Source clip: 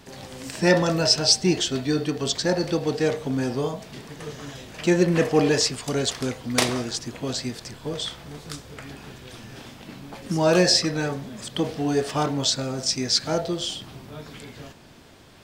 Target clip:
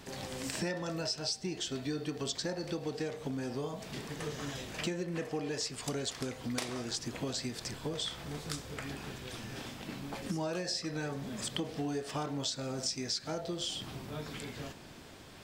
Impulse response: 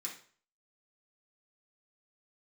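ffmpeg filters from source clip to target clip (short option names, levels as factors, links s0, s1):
-filter_complex "[0:a]acompressor=threshold=0.0282:ratio=12,asplit=2[s0][s1];[1:a]atrim=start_sample=2205[s2];[s1][s2]afir=irnorm=-1:irlink=0,volume=0.2[s3];[s0][s3]amix=inputs=2:normalize=0,volume=0.794"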